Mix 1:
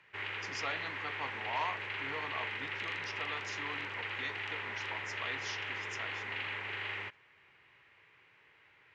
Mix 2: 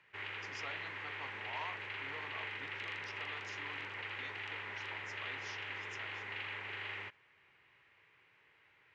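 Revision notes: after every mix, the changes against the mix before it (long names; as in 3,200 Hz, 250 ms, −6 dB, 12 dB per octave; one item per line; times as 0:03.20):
speech −8.5 dB
background −4.0 dB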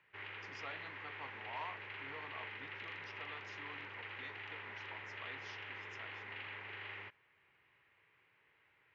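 background −3.0 dB
master: add high-frequency loss of the air 140 metres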